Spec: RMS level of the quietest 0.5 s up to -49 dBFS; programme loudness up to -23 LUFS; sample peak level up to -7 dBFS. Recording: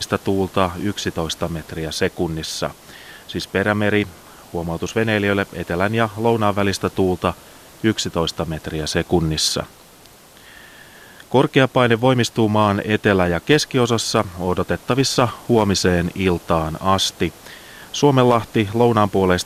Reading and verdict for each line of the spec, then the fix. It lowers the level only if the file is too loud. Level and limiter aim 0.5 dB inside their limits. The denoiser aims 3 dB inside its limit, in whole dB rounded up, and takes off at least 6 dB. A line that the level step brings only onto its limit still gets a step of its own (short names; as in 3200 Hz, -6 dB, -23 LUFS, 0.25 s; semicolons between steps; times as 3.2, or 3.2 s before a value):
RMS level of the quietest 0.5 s -46 dBFS: fail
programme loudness -19.0 LUFS: fail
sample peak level -2.0 dBFS: fail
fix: gain -4.5 dB; limiter -7.5 dBFS